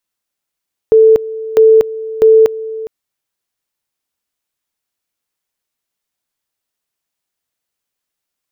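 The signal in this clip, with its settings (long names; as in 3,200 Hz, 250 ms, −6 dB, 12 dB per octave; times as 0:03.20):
tone at two levels in turn 442 Hz −3 dBFS, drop 17 dB, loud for 0.24 s, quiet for 0.41 s, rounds 3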